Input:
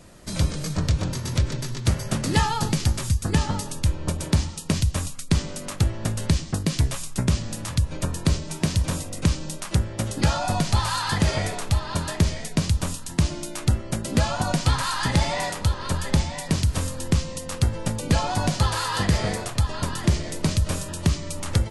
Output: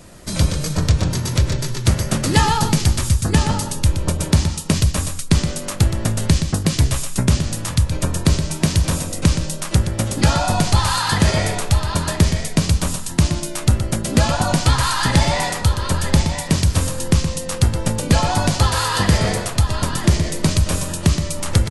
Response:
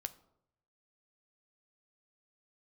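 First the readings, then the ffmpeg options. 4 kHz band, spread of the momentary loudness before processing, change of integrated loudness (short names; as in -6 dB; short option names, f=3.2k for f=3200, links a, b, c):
+6.5 dB, 5 LU, +6.0 dB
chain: -filter_complex "[0:a]highshelf=f=10k:g=4.5,asplit=2[a][b];[b]aecho=0:1:121:0.355[c];[a][c]amix=inputs=2:normalize=0,volume=5.5dB"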